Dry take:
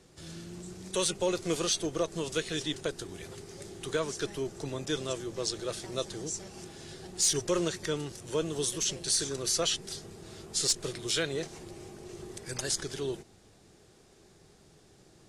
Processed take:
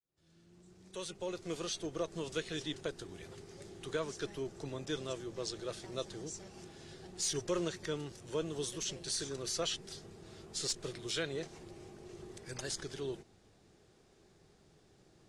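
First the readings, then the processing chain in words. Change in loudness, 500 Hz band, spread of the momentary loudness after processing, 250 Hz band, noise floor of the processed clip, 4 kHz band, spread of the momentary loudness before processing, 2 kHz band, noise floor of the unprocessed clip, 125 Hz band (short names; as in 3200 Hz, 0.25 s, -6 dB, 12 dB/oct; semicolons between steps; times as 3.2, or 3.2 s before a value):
-8.0 dB, -6.0 dB, 15 LU, -6.0 dB, -66 dBFS, -7.5 dB, 17 LU, -6.0 dB, -59 dBFS, -6.0 dB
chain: opening faded in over 2.25 s; high shelf 8600 Hz -11 dB; gain -5.5 dB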